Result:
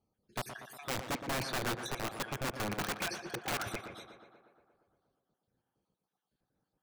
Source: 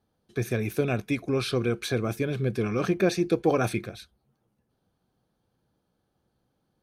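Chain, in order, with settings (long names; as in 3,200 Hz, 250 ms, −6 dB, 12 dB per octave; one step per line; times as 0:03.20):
time-frequency cells dropped at random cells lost 52%
wrap-around overflow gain 23 dB
tape delay 119 ms, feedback 74%, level −6.5 dB, low-pass 2,700 Hz
level −6.5 dB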